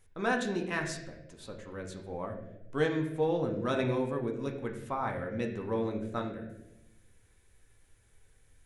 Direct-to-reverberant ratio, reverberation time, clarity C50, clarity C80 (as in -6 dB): 0.5 dB, 0.95 s, 7.0 dB, 9.0 dB